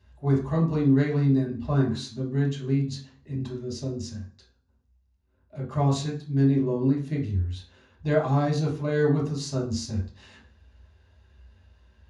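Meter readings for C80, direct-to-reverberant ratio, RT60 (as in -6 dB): 12.5 dB, -3.5 dB, 0.45 s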